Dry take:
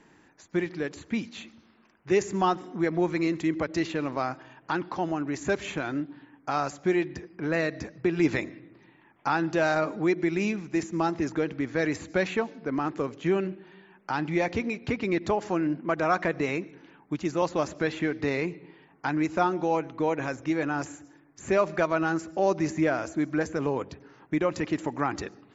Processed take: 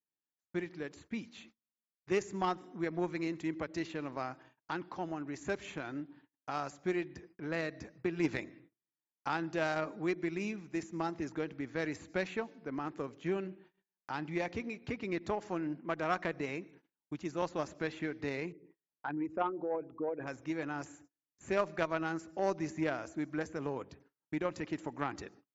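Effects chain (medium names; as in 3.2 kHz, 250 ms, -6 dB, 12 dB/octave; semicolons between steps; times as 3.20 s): 18.52–20.27 s: resonances exaggerated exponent 2; gate -47 dBFS, range -36 dB; Chebyshev shaper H 3 -16 dB, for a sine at -10 dBFS; trim -5 dB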